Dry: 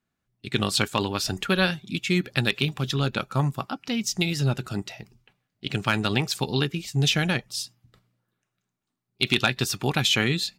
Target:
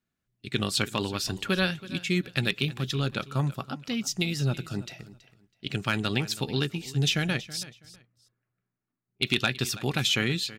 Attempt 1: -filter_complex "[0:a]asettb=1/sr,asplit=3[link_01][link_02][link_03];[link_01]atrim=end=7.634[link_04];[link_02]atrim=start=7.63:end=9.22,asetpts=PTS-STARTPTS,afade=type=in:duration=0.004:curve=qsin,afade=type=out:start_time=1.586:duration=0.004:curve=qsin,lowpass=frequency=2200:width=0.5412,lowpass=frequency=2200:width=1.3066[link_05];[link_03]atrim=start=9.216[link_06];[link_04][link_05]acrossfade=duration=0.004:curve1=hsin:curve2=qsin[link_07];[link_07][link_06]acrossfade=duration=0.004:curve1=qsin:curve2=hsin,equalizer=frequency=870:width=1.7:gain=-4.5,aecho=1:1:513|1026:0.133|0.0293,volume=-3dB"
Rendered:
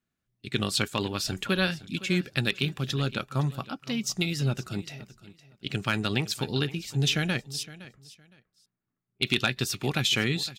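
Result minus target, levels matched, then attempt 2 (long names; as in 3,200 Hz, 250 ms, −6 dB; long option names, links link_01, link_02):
echo 187 ms late
-filter_complex "[0:a]asettb=1/sr,asplit=3[link_01][link_02][link_03];[link_01]atrim=end=7.634[link_04];[link_02]atrim=start=7.63:end=9.22,asetpts=PTS-STARTPTS,afade=type=in:duration=0.004:curve=qsin,afade=type=out:start_time=1.586:duration=0.004:curve=qsin,lowpass=frequency=2200:width=0.5412,lowpass=frequency=2200:width=1.3066[link_05];[link_03]atrim=start=9.216[link_06];[link_04][link_05]acrossfade=duration=0.004:curve1=hsin:curve2=qsin[link_07];[link_07][link_06]acrossfade=duration=0.004:curve1=qsin:curve2=hsin,equalizer=frequency=870:width=1.7:gain=-4.5,aecho=1:1:326|652:0.133|0.0293,volume=-3dB"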